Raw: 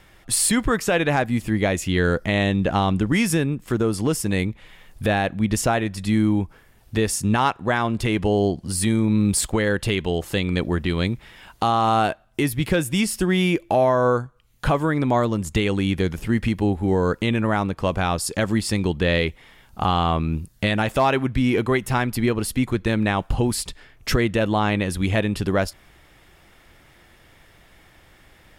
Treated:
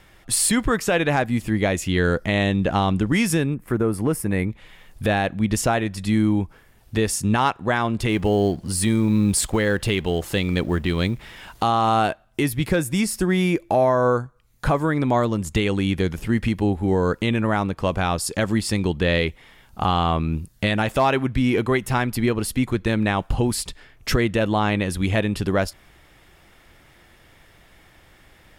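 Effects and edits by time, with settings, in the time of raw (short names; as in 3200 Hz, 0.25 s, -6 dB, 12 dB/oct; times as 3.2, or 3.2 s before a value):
3.54–4.5 band shelf 4700 Hz -11.5 dB
8.09–11.63 G.711 law mismatch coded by mu
12.65–14.85 bell 3000 Hz -7 dB 0.44 oct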